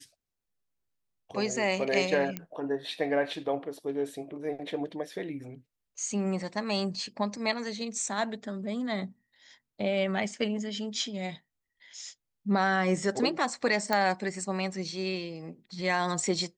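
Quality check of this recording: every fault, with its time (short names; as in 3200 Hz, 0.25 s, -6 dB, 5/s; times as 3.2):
2.37 pop -18 dBFS
13.93 pop -13 dBFS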